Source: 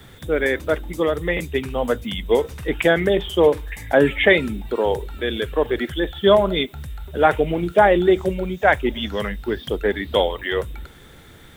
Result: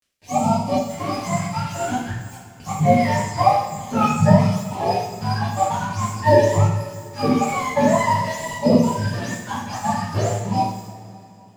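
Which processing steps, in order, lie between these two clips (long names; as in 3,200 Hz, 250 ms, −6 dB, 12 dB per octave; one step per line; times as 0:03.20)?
frequency axis turned over on the octave scale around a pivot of 600 Hz
0:02.11–0:02.60: first difference
dead-zone distortion −35.5 dBFS
auto-filter notch sine 0.49 Hz 380–1,700 Hz
coupled-rooms reverb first 0.69 s, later 3.1 s, from −16 dB, DRR −7.5 dB
level −4 dB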